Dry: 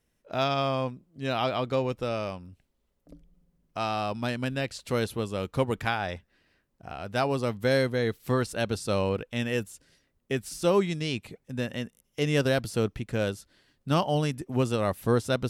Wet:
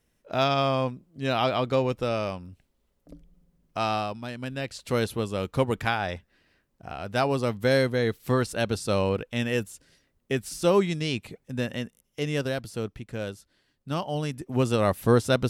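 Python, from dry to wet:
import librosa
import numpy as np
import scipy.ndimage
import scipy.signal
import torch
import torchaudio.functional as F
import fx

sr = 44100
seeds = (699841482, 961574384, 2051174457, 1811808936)

y = fx.gain(x, sr, db=fx.line((3.95, 3.0), (4.24, -6.5), (4.94, 2.0), (11.71, 2.0), (12.59, -5.0), (14.04, -5.0), (14.8, 4.0)))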